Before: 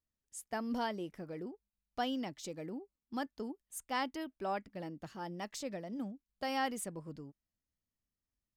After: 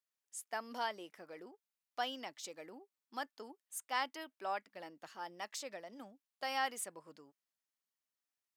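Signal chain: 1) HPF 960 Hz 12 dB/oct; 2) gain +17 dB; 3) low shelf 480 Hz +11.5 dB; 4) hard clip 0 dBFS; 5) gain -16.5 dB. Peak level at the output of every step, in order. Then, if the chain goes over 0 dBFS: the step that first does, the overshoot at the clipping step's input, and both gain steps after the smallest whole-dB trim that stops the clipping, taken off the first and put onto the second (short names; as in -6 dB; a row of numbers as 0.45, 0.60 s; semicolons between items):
-23.0, -6.0, -4.0, -4.0, -20.5 dBFS; no overload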